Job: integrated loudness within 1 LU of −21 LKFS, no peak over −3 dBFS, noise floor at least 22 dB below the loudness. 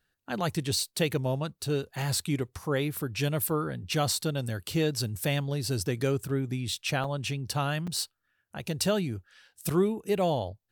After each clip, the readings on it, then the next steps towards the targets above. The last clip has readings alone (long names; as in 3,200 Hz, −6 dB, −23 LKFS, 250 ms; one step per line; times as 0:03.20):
number of dropouts 2; longest dropout 5.2 ms; integrated loudness −30.0 LKFS; sample peak −13.0 dBFS; target loudness −21.0 LKFS
→ repair the gap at 0:07.04/0:07.87, 5.2 ms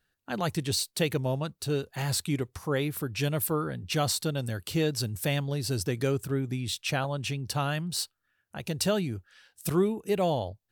number of dropouts 0; integrated loudness −30.0 LKFS; sample peak −13.0 dBFS; target loudness −21.0 LKFS
→ level +9 dB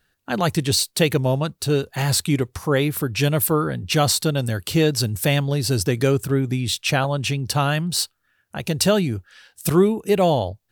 integrated loudness −21.0 LKFS; sample peak −4.0 dBFS; background noise floor −69 dBFS